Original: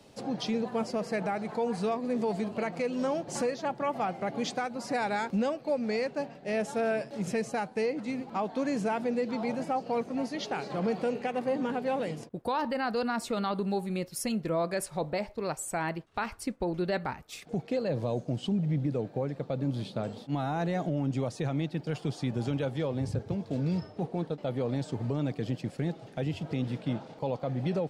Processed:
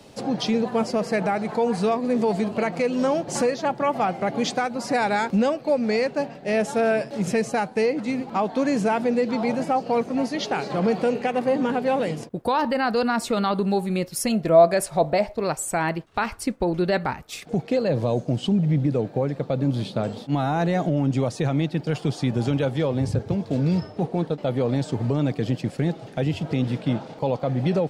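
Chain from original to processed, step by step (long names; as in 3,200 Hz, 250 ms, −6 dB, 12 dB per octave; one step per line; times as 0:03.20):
0:14.29–0:15.44: parametric band 670 Hz +10.5 dB 0.24 octaves
level +8 dB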